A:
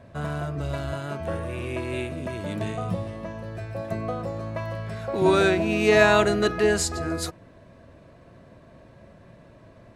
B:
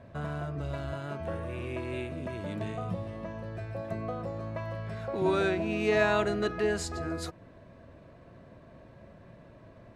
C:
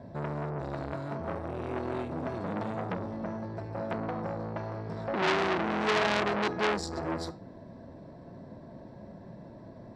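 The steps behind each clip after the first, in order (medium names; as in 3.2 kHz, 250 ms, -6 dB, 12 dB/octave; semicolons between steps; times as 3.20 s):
treble shelf 5.9 kHz -9.5 dB; in parallel at +1.5 dB: compression, threshold -34 dBFS, peak gain reduction 19.5 dB; on the sum: trim -9 dB
flange 0.49 Hz, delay 6.7 ms, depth 3.7 ms, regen -83%; reverberation RT60 0.20 s, pre-delay 3 ms, DRR 18.5 dB; transformer saturation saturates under 2.8 kHz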